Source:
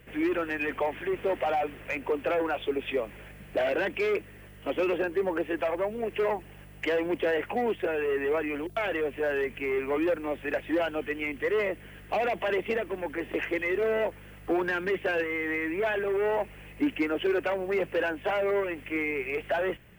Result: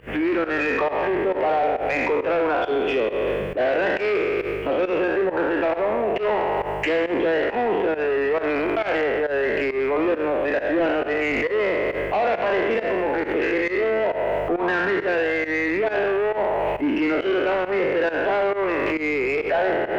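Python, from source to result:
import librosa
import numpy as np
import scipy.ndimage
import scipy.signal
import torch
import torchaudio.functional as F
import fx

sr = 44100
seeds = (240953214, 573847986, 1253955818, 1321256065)

p1 = fx.spec_trails(x, sr, decay_s=1.42)
p2 = fx.lowpass(p1, sr, hz=1400.0, slope=6)
p3 = fx.low_shelf(p2, sr, hz=340.0, db=-6.0)
p4 = fx.over_compress(p3, sr, threshold_db=-38.0, ratio=-1.0)
p5 = p3 + F.gain(torch.from_numpy(p4), -0.5).numpy()
p6 = 10.0 ** (-20.5 / 20.0) * np.tanh(p5 / 10.0 ** (-20.5 / 20.0))
p7 = fx.volume_shaper(p6, sr, bpm=136, per_beat=1, depth_db=-17, release_ms=104.0, shape='fast start')
y = F.gain(torch.from_numpy(p7), 6.5).numpy()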